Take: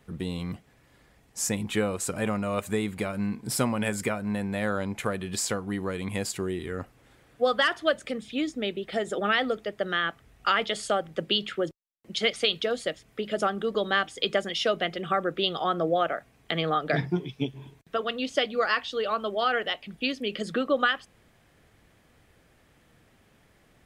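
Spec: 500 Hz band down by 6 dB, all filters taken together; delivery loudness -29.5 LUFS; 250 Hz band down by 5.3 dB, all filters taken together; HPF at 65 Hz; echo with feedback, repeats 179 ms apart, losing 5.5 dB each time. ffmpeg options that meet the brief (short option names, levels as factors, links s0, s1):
-af "highpass=65,equalizer=f=250:t=o:g=-5.5,equalizer=f=500:t=o:g=-6,aecho=1:1:179|358|537|716|895|1074|1253:0.531|0.281|0.149|0.079|0.0419|0.0222|0.0118,volume=0.944"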